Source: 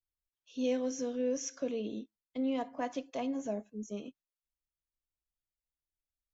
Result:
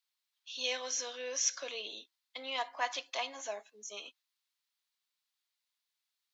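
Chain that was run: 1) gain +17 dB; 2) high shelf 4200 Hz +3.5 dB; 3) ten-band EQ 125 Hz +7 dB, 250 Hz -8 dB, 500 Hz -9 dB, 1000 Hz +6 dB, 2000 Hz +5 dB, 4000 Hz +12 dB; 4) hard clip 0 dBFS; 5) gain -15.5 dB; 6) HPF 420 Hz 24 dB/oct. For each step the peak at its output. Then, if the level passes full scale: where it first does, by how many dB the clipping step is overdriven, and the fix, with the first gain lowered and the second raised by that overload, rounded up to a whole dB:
-5.5, -5.0, -2.0, -2.0, -17.5, -17.5 dBFS; no overload

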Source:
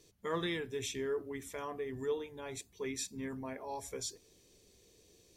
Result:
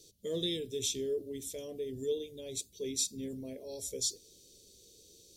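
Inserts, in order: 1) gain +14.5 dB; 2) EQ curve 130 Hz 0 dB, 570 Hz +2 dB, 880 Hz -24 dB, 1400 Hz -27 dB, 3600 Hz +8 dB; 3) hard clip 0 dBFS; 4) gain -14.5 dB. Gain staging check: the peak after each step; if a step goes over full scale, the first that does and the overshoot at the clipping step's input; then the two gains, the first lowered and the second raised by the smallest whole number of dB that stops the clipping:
-10.0, -5.0, -5.0, -19.5 dBFS; no overload

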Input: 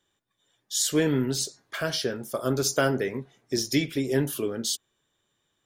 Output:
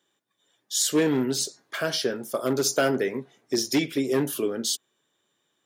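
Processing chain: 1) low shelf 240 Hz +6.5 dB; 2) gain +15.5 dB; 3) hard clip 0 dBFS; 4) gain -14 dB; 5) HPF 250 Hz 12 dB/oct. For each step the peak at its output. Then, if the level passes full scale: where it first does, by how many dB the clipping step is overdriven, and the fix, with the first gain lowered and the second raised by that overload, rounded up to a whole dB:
-8.5, +7.0, 0.0, -14.0, -9.5 dBFS; step 2, 7.0 dB; step 2 +8.5 dB, step 4 -7 dB

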